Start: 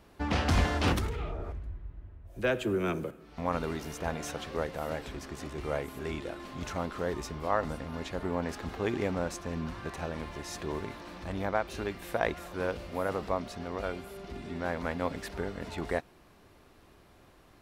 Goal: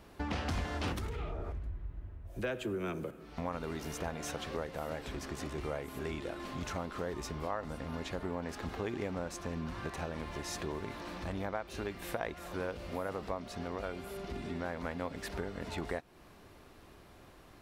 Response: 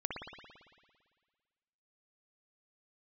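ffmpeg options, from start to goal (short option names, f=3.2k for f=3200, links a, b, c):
-af "acompressor=threshold=-38dB:ratio=3,volume=2dB"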